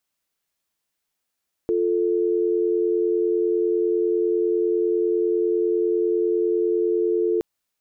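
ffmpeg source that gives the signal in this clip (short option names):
-f lavfi -i "aevalsrc='0.0891*(sin(2*PI*350*t)+sin(2*PI*440*t))':d=5.72:s=44100"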